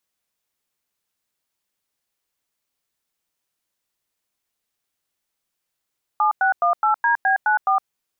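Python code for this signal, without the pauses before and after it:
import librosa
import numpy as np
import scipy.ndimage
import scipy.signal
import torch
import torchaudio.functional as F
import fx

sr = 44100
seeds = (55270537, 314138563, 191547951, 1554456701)

y = fx.dtmf(sr, digits='7618DB94', tone_ms=113, gap_ms=97, level_db=-17.5)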